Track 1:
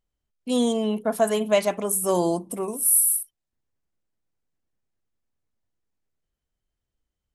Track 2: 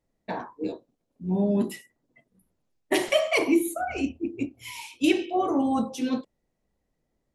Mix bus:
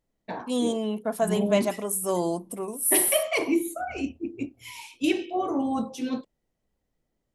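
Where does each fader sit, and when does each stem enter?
-4.0 dB, -2.5 dB; 0.00 s, 0.00 s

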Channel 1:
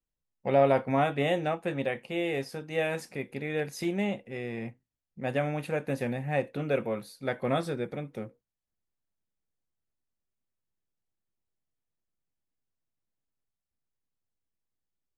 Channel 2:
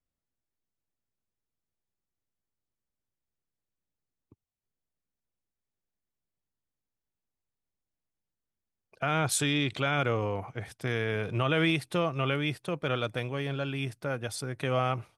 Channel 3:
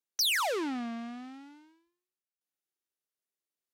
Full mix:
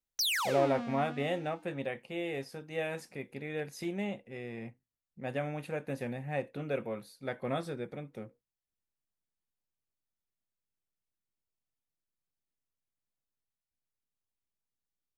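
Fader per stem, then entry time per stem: -6.0 dB, mute, -3.0 dB; 0.00 s, mute, 0.00 s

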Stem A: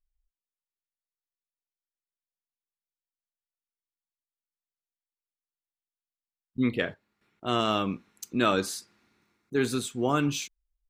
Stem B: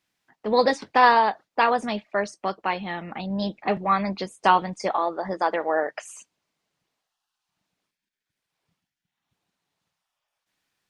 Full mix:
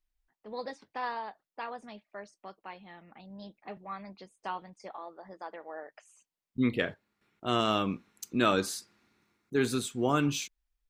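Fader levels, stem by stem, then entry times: -1.5 dB, -19.0 dB; 0.00 s, 0.00 s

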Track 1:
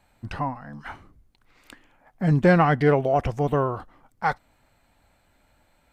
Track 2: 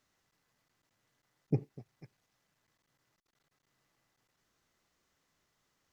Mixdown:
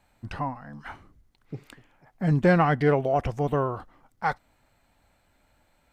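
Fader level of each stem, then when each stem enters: -2.5 dB, -7.0 dB; 0.00 s, 0.00 s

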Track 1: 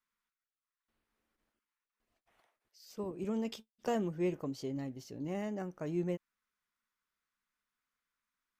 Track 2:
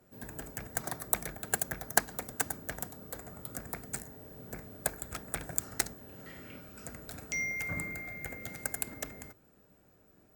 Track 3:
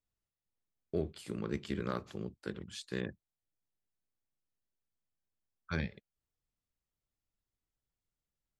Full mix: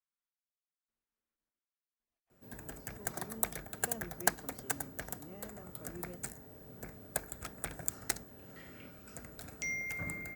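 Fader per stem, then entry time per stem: -14.0 dB, -3.5 dB, mute; 0.00 s, 2.30 s, mute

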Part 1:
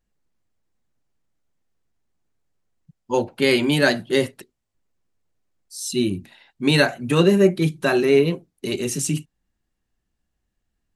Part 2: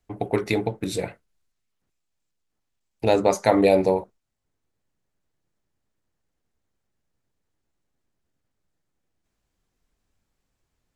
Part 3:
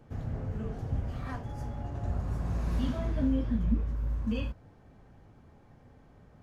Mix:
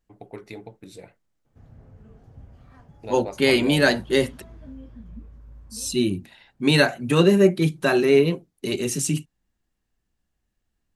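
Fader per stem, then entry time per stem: -0.5 dB, -15.5 dB, -13.5 dB; 0.00 s, 0.00 s, 1.45 s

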